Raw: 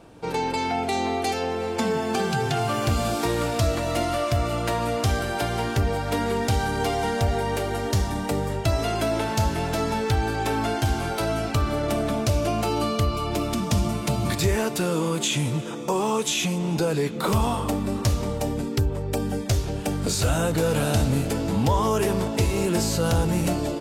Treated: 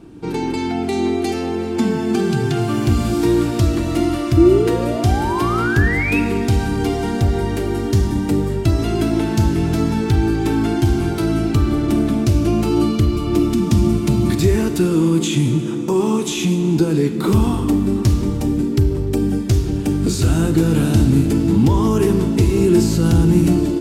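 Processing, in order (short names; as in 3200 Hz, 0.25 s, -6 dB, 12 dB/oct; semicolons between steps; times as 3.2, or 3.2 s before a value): painted sound rise, 4.37–6.2, 320–2700 Hz -22 dBFS; resonant low shelf 430 Hz +7 dB, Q 3; Schroeder reverb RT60 1.5 s, combs from 33 ms, DRR 10 dB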